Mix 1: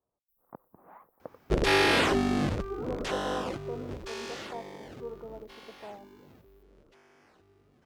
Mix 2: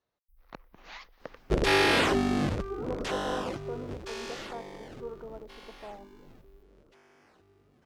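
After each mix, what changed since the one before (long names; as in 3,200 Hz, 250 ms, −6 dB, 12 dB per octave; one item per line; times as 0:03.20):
speech: remove low-pass filter 1,100 Hz 24 dB per octave
first sound: remove first-order pre-emphasis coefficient 0.97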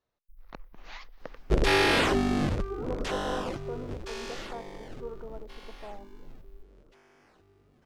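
master: remove high-pass filter 72 Hz 6 dB per octave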